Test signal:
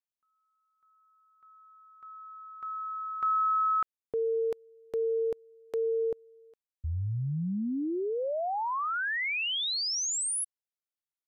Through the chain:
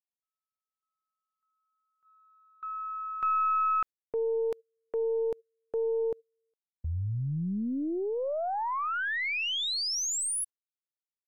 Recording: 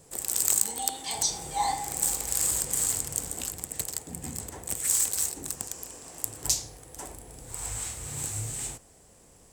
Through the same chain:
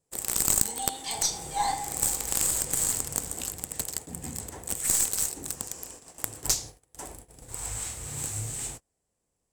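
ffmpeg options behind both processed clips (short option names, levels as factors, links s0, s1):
-af "aeval=exprs='(tanh(3.16*val(0)+0.8)-tanh(0.8))/3.16':c=same,agate=range=0.0631:threshold=0.00316:ratio=16:release=153:detection=peak,volume=1.78"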